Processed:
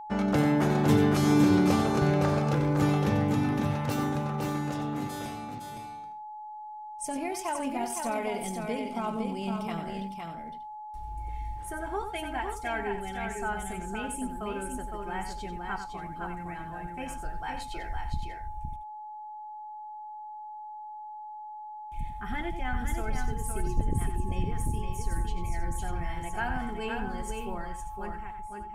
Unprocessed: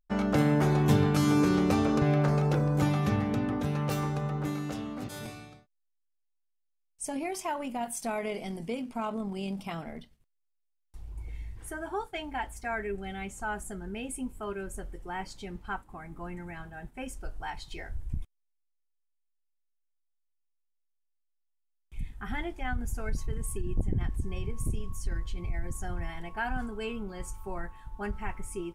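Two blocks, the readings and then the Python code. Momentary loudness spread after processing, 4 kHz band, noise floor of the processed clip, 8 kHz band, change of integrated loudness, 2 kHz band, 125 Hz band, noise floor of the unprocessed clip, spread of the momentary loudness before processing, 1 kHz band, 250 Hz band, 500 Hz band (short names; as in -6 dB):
17 LU, +1.5 dB, -42 dBFS, +1.5 dB, +1.0 dB, +1.5 dB, 0.0 dB, -77 dBFS, 17 LU, +4.5 dB, +2.0 dB, +1.5 dB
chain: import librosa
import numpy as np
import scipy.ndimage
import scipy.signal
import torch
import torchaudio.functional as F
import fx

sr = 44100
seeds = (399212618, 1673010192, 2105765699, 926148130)

y = fx.fade_out_tail(x, sr, length_s=1.31)
y = fx.echo_multitap(y, sr, ms=(92, 511, 588), db=(-9.0, -5.0, -14.5))
y = y + 10.0 ** (-39.0 / 20.0) * np.sin(2.0 * np.pi * 850.0 * np.arange(len(y)) / sr)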